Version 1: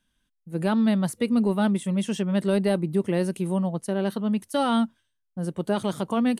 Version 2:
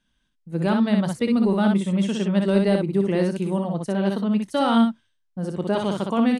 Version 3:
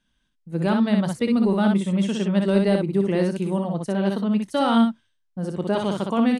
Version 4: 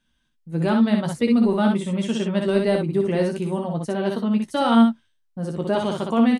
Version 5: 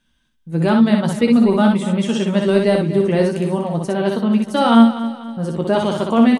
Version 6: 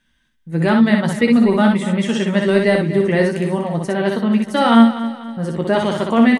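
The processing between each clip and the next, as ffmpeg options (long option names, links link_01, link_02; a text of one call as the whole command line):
ffmpeg -i in.wav -filter_complex "[0:a]lowpass=6900,asplit=2[link_01][link_02];[link_02]aecho=0:1:30|61:0.158|0.631[link_03];[link_01][link_03]amix=inputs=2:normalize=0,volume=1.5dB" out.wav
ffmpeg -i in.wav -af anull out.wav
ffmpeg -i in.wav -filter_complex "[0:a]asplit=2[link_01][link_02];[link_02]adelay=13,volume=-7dB[link_03];[link_01][link_03]amix=inputs=2:normalize=0" out.wav
ffmpeg -i in.wav -af "aecho=1:1:244|488|732|976:0.211|0.0888|0.0373|0.0157,volume=5dB" out.wav
ffmpeg -i in.wav -af "equalizer=frequency=1900:width=3.4:gain=10" out.wav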